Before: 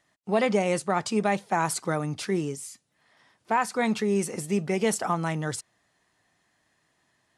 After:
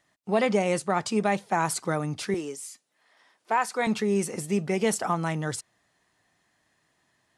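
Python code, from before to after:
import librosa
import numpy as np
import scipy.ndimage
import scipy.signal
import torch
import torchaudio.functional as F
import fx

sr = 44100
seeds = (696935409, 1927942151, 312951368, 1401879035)

y = fx.highpass(x, sr, hz=340.0, slope=12, at=(2.34, 3.87))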